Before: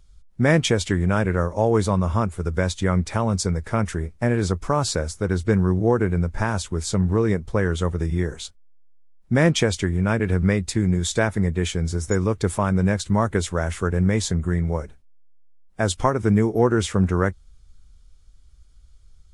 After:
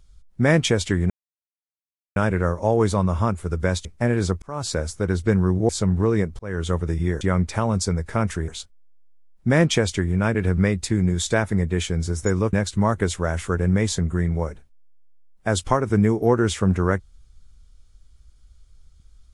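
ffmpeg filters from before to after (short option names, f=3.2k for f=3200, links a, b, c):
-filter_complex "[0:a]asplit=9[a][b][c][d][e][f][g][h][i];[a]atrim=end=1.1,asetpts=PTS-STARTPTS,afade=t=out:st=1.096:d=0.004:c=hsin,apad=pad_dur=1.06[j];[b]atrim=start=1.1:end=2.792,asetpts=PTS-STARTPTS,afade=t=in:d=0.004:c=hsin[k];[c]atrim=start=4.058:end=4.63,asetpts=PTS-STARTPTS,afade=t=out:st=0.568:d=0.004:c=hsin[l];[d]atrim=start=4.63:end=5.902,asetpts=PTS-STARTPTS,afade=t=in:d=0.37[m];[e]atrim=start=6.808:end=7.51,asetpts=PTS-STARTPTS,afade=t=out:st=0.698:d=0.004:c=hsin[n];[f]atrim=start=7.51:end=8.332,asetpts=PTS-STARTPTS,afade=t=in:d=0.28[o];[g]atrim=start=2.788:end=4.062[p];[h]atrim=start=8.328:end=12.382[q];[i]atrim=start=12.858[r];[j][k]concat=n=2:v=0:a=1[s];[l][m]concat=n=2:v=0:a=1[t];[s][t]acrossfade=d=0.004:c1=hsin:c2=hsin[u];[n][o]concat=n=2:v=0:a=1[v];[u][v]acrossfade=d=0.004:c1=hsin:c2=hsin[w];[w][p]acrossfade=d=0.004:c1=hsin:c2=hsin[x];[x][q]acrossfade=d=0.004:c1=hsin:c2=hsin[y];[y][r]acrossfade=d=0.004:c1=hsin:c2=hsin"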